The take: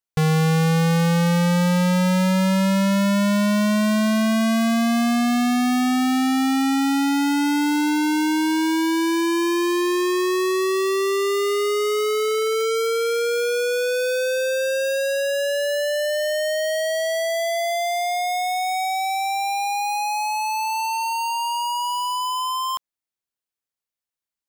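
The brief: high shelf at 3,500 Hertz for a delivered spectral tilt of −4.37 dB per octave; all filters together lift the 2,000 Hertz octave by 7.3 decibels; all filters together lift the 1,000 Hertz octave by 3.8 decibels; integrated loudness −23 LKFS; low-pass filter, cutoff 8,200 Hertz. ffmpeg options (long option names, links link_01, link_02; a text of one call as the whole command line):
ffmpeg -i in.wav -af "lowpass=8200,equalizer=frequency=1000:width_type=o:gain=3,equalizer=frequency=2000:width_type=o:gain=7,highshelf=frequency=3500:gain=4,volume=-4.5dB" out.wav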